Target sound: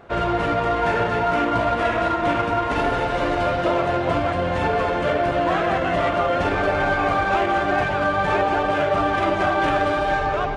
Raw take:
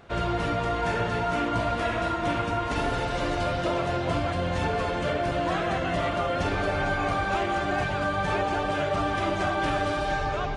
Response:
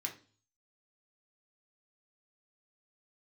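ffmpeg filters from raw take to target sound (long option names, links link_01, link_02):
-filter_complex "[0:a]bass=frequency=250:gain=-6,treble=frequency=4000:gain=-2,asplit=2[link_01][link_02];[link_02]adynamicsmooth=sensitivity=3.5:basefreq=2200,volume=2.5dB[link_03];[link_01][link_03]amix=inputs=2:normalize=0"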